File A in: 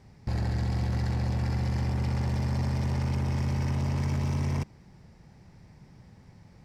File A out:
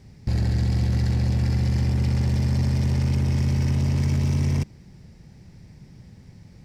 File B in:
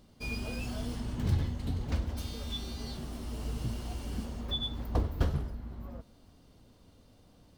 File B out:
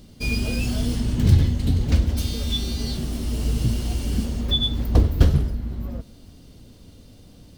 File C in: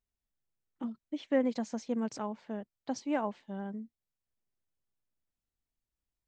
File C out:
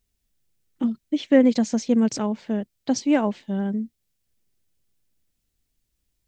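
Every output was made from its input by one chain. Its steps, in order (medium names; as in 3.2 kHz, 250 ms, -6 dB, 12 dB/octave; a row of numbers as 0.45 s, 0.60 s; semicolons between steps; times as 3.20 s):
peaking EQ 980 Hz -9.5 dB 1.8 oct; normalise loudness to -23 LUFS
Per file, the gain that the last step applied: +7.0 dB, +13.5 dB, +15.5 dB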